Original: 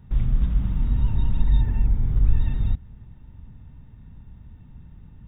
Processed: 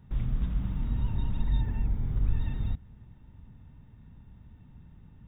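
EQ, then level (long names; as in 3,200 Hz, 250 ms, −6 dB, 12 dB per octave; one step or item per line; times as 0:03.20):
low-shelf EQ 82 Hz −6.5 dB
−3.5 dB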